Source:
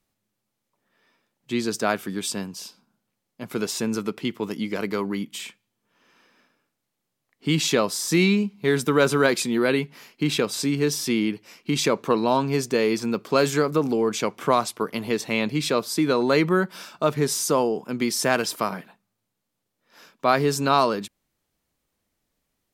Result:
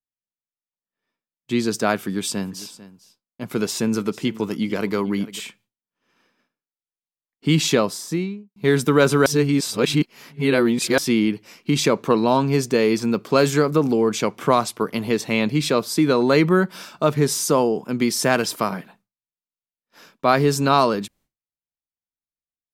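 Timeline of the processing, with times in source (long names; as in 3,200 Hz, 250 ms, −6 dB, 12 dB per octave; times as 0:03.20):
0:02.01–0:05.40: single-tap delay 447 ms −17.5 dB
0:07.68–0:08.56: fade out and dull
0:09.26–0:10.98: reverse
whole clip: downward expander −53 dBFS; low-shelf EQ 250 Hz +5 dB; level +2 dB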